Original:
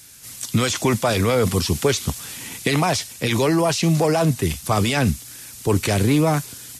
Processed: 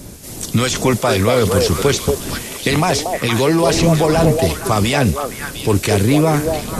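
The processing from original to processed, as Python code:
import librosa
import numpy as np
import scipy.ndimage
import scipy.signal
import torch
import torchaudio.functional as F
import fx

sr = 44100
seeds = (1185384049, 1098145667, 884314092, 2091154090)

y = fx.dmg_wind(x, sr, seeds[0], corner_hz=280.0, level_db=-32.0)
y = fx.echo_stepped(y, sr, ms=233, hz=530.0, octaves=1.4, feedback_pct=70, wet_db=-1.0)
y = F.gain(torch.from_numpy(y), 3.5).numpy()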